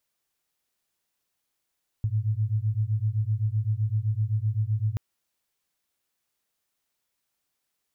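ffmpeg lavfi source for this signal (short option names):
-f lavfi -i "aevalsrc='0.0501*(sin(2*PI*104*t)+sin(2*PI*111.8*t))':d=2.93:s=44100"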